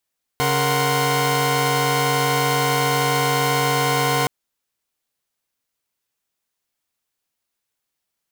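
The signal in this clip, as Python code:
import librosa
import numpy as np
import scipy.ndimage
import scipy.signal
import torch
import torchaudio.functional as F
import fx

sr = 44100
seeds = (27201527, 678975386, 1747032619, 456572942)

y = fx.chord(sr, length_s=3.87, notes=(49, 70, 78, 84), wave='saw', level_db=-20.5)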